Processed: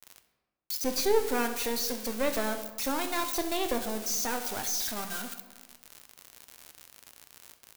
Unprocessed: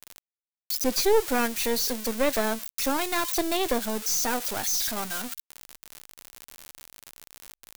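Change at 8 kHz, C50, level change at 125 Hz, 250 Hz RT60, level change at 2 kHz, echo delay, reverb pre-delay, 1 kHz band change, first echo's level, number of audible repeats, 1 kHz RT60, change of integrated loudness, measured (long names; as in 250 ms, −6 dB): −4.5 dB, 9.5 dB, −4.0 dB, 1.4 s, −4.5 dB, 66 ms, 10 ms, −4.0 dB, −16.5 dB, 1, 1.2 s, −4.5 dB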